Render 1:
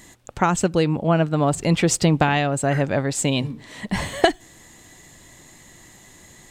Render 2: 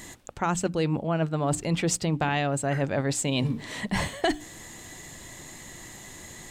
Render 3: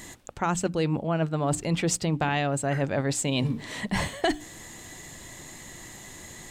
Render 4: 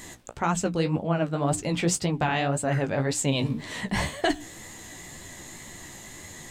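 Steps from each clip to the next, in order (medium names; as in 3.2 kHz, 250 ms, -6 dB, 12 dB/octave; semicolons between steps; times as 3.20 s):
hum notches 60/120/180/240/300 Hz; reverse; compression 6:1, threshold -27 dBFS, peak gain reduction 16.5 dB; reverse; trim +4 dB
no audible change
flange 1.9 Hz, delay 9.8 ms, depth 9.2 ms, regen +28%; trim +4.5 dB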